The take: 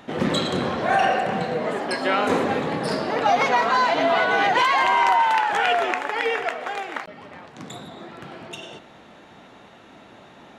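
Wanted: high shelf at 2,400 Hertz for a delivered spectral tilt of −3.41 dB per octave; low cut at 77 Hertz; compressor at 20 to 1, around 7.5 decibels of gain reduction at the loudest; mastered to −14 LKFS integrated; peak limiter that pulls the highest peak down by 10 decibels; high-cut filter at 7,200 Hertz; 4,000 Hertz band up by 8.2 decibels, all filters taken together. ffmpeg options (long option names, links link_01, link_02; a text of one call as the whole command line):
ffmpeg -i in.wav -af "highpass=77,lowpass=7200,highshelf=frequency=2400:gain=8,equalizer=frequency=4000:width_type=o:gain=4,acompressor=threshold=-20dB:ratio=20,volume=13dB,alimiter=limit=-4.5dB:level=0:latency=1" out.wav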